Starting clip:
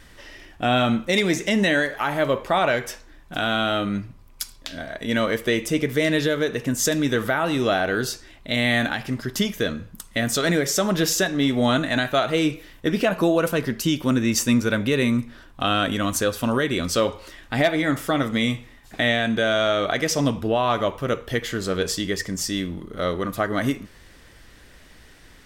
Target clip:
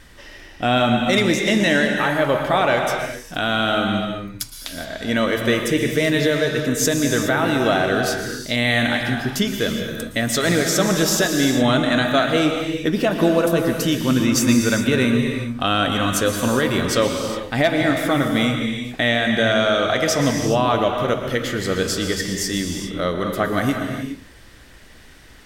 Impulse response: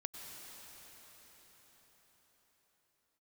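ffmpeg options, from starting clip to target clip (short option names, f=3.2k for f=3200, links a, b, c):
-filter_complex "[0:a]asettb=1/sr,asplit=3[a][b][c];[a]atrim=end=12.894[d];[b]atrim=start=12.89:end=13.62,asetpts=PTS-STARTPTS,afade=t=in:d=0.004:c=qsin,afade=t=out:st=0.726:d=0.004:c=qsin,equalizer=f=2k:w=1.4:g=-4[e];[c]atrim=start=13.616[f];[d][e]acrossfade=d=0.004:c1=hsin:c2=qsin[g];[g][f]acrossfade=d=0.004:c1=qsin:c2=hsin[h];[1:a]atrim=start_sample=2205,afade=t=out:st=0.41:d=0.01,atrim=end_sample=18522,asetrate=37485,aresample=44100[i];[h][i]afir=irnorm=-1:irlink=0,volume=5dB"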